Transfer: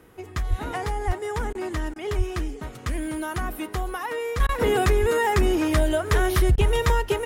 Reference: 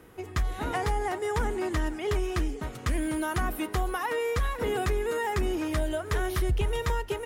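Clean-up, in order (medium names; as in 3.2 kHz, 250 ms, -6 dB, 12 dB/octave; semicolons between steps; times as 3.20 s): de-plosive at 0.49/1.06/2.17/5.00 s; interpolate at 1.53/1.94/4.47/6.56 s, 18 ms; gain correction -7.5 dB, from 4.40 s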